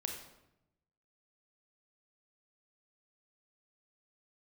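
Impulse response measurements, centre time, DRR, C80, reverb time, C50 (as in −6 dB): 32 ms, 2.0 dB, 8.0 dB, 0.85 s, 5.0 dB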